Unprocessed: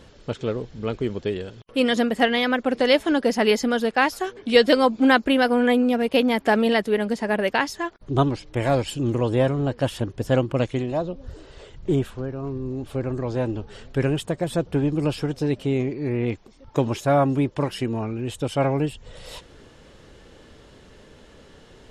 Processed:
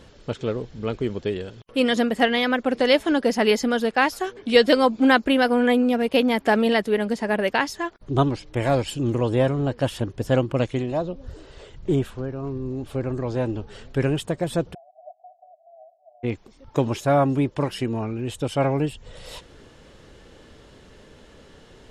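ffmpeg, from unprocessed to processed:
-filter_complex "[0:a]asplit=3[a][b][c];[a]afade=t=out:st=14.73:d=0.02[d];[b]asuperpass=centerf=690:order=8:qfactor=5.4,afade=t=in:st=14.73:d=0.02,afade=t=out:st=16.23:d=0.02[e];[c]afade=t=in:st=16.23:d=0.02[f];[d][e][f]amix=inputs=3:normalize=0"

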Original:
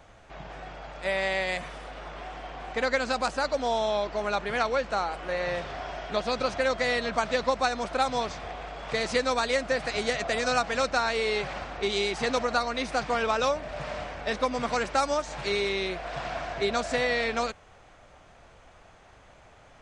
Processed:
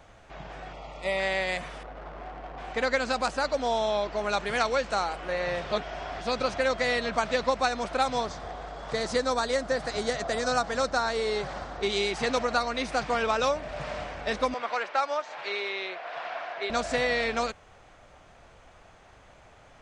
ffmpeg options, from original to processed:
-filter_complex "[0:a]asettb=1/sr,asplit=3[a][b][c];[a]atrim=end=0.734[d];[b]atrim=start=0.73:end=1.2,asetpts=PTS-STARTPTS,afade=t=in:d=0.004:c=qsin,afade=t=out:st=0.466:d=0.004:c=qsin,asuperstop=centerf=1600:order=4:qfactor=2.9[e];[c]atrim=start=1.196[f];[d][e]acrossfade=d=0.004:c1=hsin:c2=qsin[g];[g][f]acrossfade=d=0.004:c1=qsin:c2=hsin,asettb=1/sr,asplit=3[h][i][j];[h]atrim=end=1.834[k];[i]atrim=start=1.83:end=2.58,asetpts=PTS-STARTPTS,afade=t=in:d=0.004:c=qsin,afade=t=out:st=0.746:d=0.004:c=qsin,adynamicsmooth=sensitivity=5:basefreq=960[l];[j]atrim=start=2.576[m];[k][l]acrossfade=d=0.004:c1=hsin:c2=qsin[n];[n][m]acrossfade=d=0.004:c1=qsin:c2=hsin,asettb=1/sr,asplit=3[o][p][q];[o]atrim=end=4.294[r];[p]atrim=start=4.29:end=5.13,asetpts=PTS-STARTPTS,afade=t=in:d=0.004:c=qsin,afade=t=out:st=0.836:d=0.004:c=qsin,highshelf=f=5.6k:g=10.5[s];[q]atrim=start=5.126[t];[r][s]acrossfade=d=0.004:c1=hsin:c2=qsin[u];[u][t]acrossfade=d=0.004:c1=qsin:c2=hsin,asettb=1/sr,asplit=3[v][w][x];[v]atrim=end=8.214[y];[w]atrim=start=8.21:end=11.83,asetpts=PTS-STARTPTS,afade=t=in:d=0.004:c=qsin,afade=t=out:st=3.616:d=0.004:c=qsin,equalizer=f=2.5k:t=o:w=0.64:g=-9.5[z];[x]atrim=start=11.826[aa];[y][z]acrossfade=d=0.004:c1=hsin:c2=qsin[ab];[ab][aa]acrossfade=d=0.004:c1=qsin:c2=hsin,asettb=1/sr,asplit=3[ac][ad][ae];[ac]atrim=end=14.544[af];[ad]atrim=start=14.54:end=16.7,asetpts=PTS-STARTPTS,afade=t=in:d=0.004:c=qsin,afade=t=out:st=2.156:d=0.004:c=qsin,highpass=590,lowpass=3.4k[ag];[ae]atrim=start=16.696[ah];[af][ag]acrossfade=d=0.004:c1=hsin:c2=qsin[ai];[ai][ah]acrossfade=d=0.004:c1=qsin:c2=hsin,asplit=3[aj][ak][al];[aj]atrim=end=5.712[am];[ak]atrim=start=5.708:end=6.212,asetpts=PTS-STARTPTS,areverse[an];[al]atrim=start=6.208[ao];[am][an]acrossfade=d=0.004:c1=hsin:c2=hsin[ap];[ap][ao]acrossfade=d=0.004:c1=hsin:c2=hsin"

